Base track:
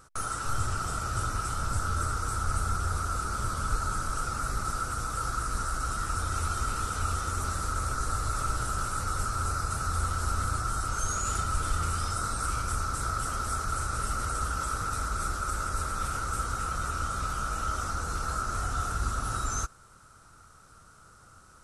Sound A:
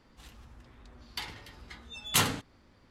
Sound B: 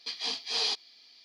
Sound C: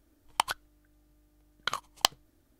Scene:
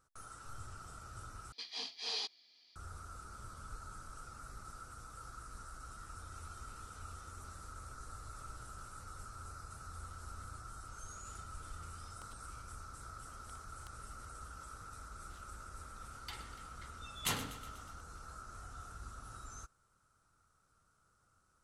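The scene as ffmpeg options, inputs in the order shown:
-filter_complex "[0:a]volume=-19dB[a];[3:a]acompressor=threshold=-43dB:ratio=6:attack=3.2:release=140:knee=1:detection=peak[b];[1:a]aecho=1:1:122|244|366|488|610|732:0.2|0.12|0.0718|0.0431|0.0259|0.0155[c];[a]asplit=2[d][e];[d]atrim=end=1.524[f];[2:a]atrim=end=1.24,asetpts=PTS-STARTPTS,volume=-9.5dB[g];[e]atrim=start=2.756[h];[b]atrim=end=2.59,asetpts=PTS-STARTPTS,volume=-16dB,afade=t=in:d=0.004:c=hsin,afade=t=out:st=2.586:d=0.004:c=hsin,adelay=11820[i];[c]atrim=end=2.9,asetpts=PTS-STARTPTS,volume=-10.5dB,afade=t=in:d=0.004:c=hsin,afade=t=out:st=2.896:d=0.004:c=hsin,adelay=15110[j];[f][g]acrossfade=d=0.004:c1=hsin:c2=hsin[k];[k][h]acrossfade=d=0.004:c1=hsin:c2=hsin[l];[l][i][j]amix=inputs=3:normalize=0"

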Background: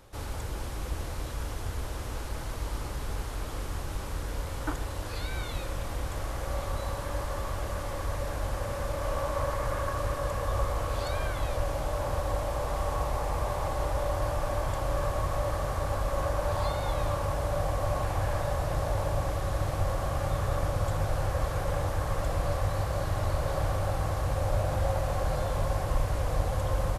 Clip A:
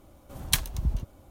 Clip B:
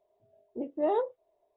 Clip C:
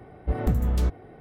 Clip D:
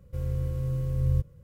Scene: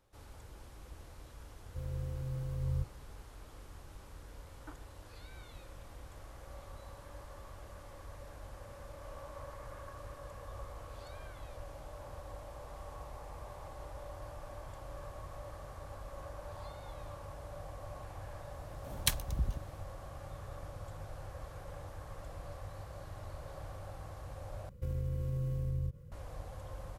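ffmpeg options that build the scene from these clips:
-filter_complex "[4:a]asplit=2[a][b];[0:a]volume=-17dB[c];[b]acompressor=threshold=-31dB:ratio=6:attack=3.2:release=140:knee=1:detection=peak[d];[c]asplit=2[e][f];[e]atrim=end=24.694[g];[d]atrim=end=1.43,asetpts=PTS-STARTPTS,volume=-0.5dB[h];[f]atrim=start=26.116[i];[a]atrim=end=1.43,asetpts=PTS-STARTPTS,volume=-9.5dB,afade=t=in:d=0.004:c=hsin,afade=t=out:st=1.426:d=0.004:c=hsin,adelay=1620[j];[1:a]atrim=end=1.3,asetpts=PTS-STARTPTS,volume=-6dB,afade=t=in:d=0.004:c=hsin,afade=t=out:st=1.296:d=0.004:c=hsin,adelay=18540[k];[g][h]acrossfade=d=0.004:c1=hsin:c2=hsin[l];[l][i]acrossfade=d=0.004:c1=hsin:c2=hsin[m];[m][j][k]amix=inputs=3:normalize=0"

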